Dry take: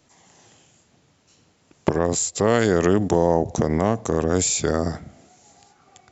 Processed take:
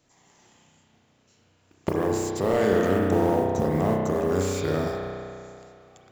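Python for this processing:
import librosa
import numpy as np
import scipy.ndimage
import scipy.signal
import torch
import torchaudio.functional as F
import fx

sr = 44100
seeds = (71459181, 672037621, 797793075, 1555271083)

y = fx.mod_noise(x, sr, seeds[0], snr_db=27)
y = fx.rev_spring(y, sr, rt60_s=2.4, pass_ms=(32,), chirp_ms=70, drr_db=-1.5)
y = fx.slew_limit(y, sr, full_power_hz=210.0)
y = y * librosa.db_to_amplitude(-6.5)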